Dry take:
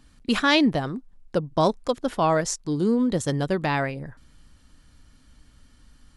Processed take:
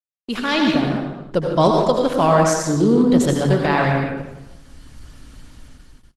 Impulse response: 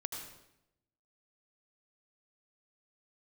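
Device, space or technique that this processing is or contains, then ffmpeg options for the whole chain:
speakerphone in a meeting room: -filter_complex "[1:a]atrim=start_sample=2205[link_01];[0:a][link_01]afir=irnorm=-1:irlink=0,asplit=2[link_02][link_03];[link_03]adelay=160,highpass=300,lowpass=3400,asoftclip=type=hard:threshold=-15.5dB,volume=-9dB[link_04];[link_02][link_04]amix=inputs=2:normalize=0,dynaudnorm=framelen=160:gausssize=9:maxgain=15dB,agate=range=-57dB:threshold=-44dB:ratio=16:detection=peak,volume=-1dB" -ar 48000 -c:a libopus -b:a 16k

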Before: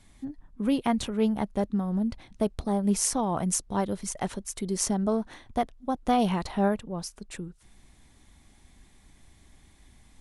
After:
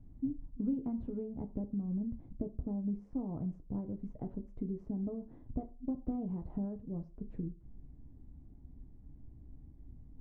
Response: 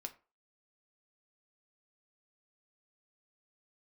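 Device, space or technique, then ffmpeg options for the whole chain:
television next door: -filter_complex "[0:a]asettb=1/sr,asplit=3[link_01][link_02][link_03];[link_01]atrim=end=0.724[link_04];[link_02]atrim=start=0.72:end=1.44,asetpts=PTS-STARTPTS,afade=type=in:duration=0.004:curve=qsin,afade=type=out:start_time=0.716:duration=0.004:curve=qsin,asplit=2[link_05][link_06];[link_06]adelay=12,volume=-7dB[link_07];[link_05][link_07]amix=inputs=2:normalize=0,atrim=end_sample=31752[link_08];[link_03]atrim=start=1.436[link_09];[link_04][link_08]acrossfade=duration=0.004:curve1=hsin:curve2=qsin[link_10];[link_10][link_09]acrossfade=duration=0.004:curve1=qsin:curve2=hsin,acompressor=threshold=-35dB:ratio=5,lowpass=270[link_11];[1:a]atrim=start_sample=2205[link_12];[link_11][link_12]afir=irnorm=-1:irlink=0,volume=8.5dB"

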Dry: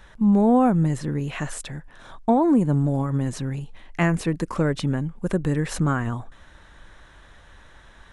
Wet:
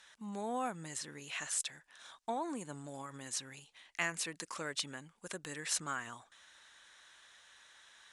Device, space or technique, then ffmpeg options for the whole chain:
piezo pickup straight into a mixer: -af "lowpass=7600,aderivative,volume=4dB"

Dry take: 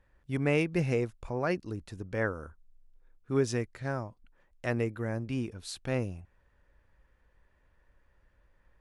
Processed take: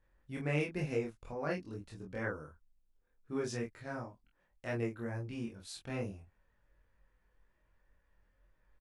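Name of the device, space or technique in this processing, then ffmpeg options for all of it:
double-tracked vocal: -filter_complex "[0:a]asplit=2[link_01][link_02];[link_02]adelay=26,volume=-2dB[link_03];[link_01][link_03]amix=inputs=2:normalize=0,flanger=delay=19.5:depth=2.7:speed=2.1,volume=-5dB"

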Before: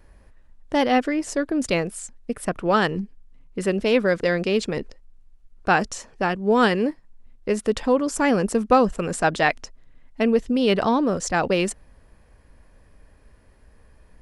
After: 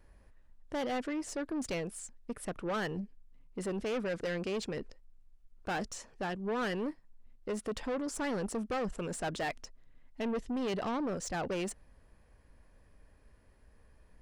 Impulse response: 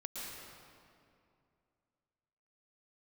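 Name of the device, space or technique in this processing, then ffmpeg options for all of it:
saturation between pre-emphasis and de-emphasis: -af "highshelf=frequency=5800:gain=7,asoftclip=type=tanh:threshold=-22dB,highshelf=frequency=5800:gain=-7,volume=-8.5dB"

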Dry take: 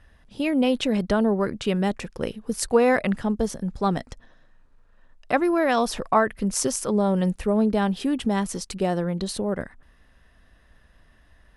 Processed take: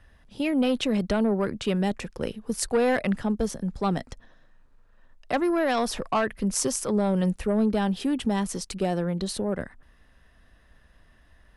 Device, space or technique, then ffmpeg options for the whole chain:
one-band saturation: -filter_complex "[0:a]acrossover=split=210|3000[link_01][link_02][link_03];[link_02]asoftclip=type=tanh:threshold=-17dB[link_04];[link_01][link_04][link_03]amix=inputs=3:normalize=0,volume=-1dB"

